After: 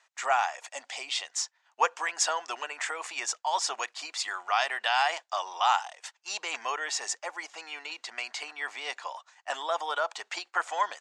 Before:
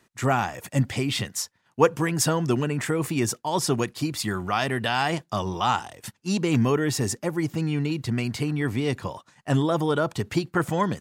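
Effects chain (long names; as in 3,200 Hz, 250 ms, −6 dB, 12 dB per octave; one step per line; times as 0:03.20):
elliptic band-pass filter 720–7,300 Hz, stop band 60 dB
0:00.55–0:01.31: dynamic equaliser 1,600 Hz, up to −7 dB, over −47 dBFS, Q 1.1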